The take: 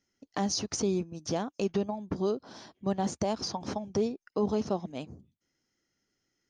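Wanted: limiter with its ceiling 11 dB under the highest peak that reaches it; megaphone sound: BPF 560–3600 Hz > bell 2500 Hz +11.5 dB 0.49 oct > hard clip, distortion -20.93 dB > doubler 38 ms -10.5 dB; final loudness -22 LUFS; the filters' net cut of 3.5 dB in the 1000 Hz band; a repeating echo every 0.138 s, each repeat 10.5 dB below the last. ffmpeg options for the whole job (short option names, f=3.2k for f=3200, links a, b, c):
-filter_complex "[0:a]equalizer=f=1k:t=o:g=-4,alimiter=level_in=6dB:limit=-24dB:level=0:latency=1,volume=-6dB,highpass=560,lowpass=3.6k,equalizer=f=2.5k:t=o:w=0.49:g=11.5,aecho=1:1:138|276|414:0.299|0.0896|0.0269,asoftclip=type=hard:threshold=-36dB,asplit=2[a][b];[b]adelay=38,volume=-10.5dB[c];[a][c]amix=inputs=2:normalize=0,volume=24dB"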